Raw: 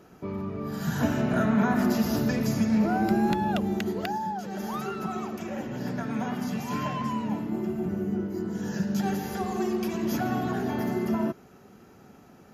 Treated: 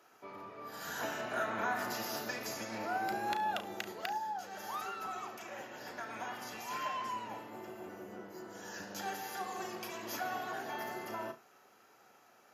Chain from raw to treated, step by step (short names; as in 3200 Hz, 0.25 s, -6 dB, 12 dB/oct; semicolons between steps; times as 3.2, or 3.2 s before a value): octaver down 1 oct, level +3 dB; HPF 740 Hz 12 dB/oct; on a send: flutter echo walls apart 6 m, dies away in 0.21 s; on the sum: gain -4 dB